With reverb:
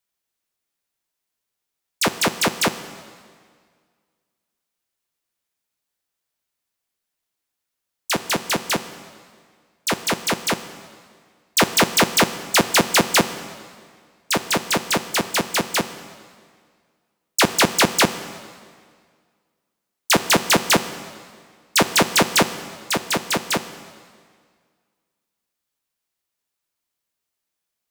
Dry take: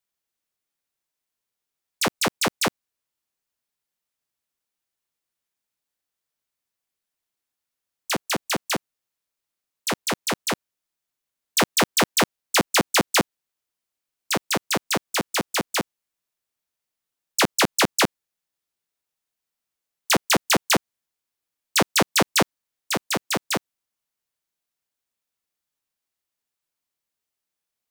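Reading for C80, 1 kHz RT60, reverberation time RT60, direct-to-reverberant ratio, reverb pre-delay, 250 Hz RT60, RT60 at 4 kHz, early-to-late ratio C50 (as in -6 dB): 13.5 dB, 1.9 s, 1.9 s, 11.0 dB, 3 ms, 1.9 s, 1.7 s, 12.5 dB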